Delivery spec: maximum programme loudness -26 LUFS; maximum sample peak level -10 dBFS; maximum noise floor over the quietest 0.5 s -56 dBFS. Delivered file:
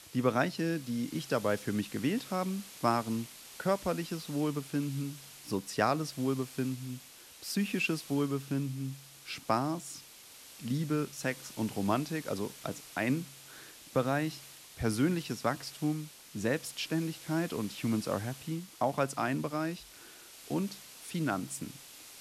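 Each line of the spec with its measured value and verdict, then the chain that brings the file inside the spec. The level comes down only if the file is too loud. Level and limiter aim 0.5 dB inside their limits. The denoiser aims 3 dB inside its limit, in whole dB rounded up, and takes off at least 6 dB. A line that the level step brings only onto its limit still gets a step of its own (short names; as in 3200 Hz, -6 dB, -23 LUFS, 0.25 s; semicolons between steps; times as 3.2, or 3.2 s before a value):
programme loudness -34.0 LUFS: OK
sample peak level -12.5 dBFS: OK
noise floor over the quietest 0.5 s -53 dBFS: fail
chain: denoiser 6 dB, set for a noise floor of -53 dBFS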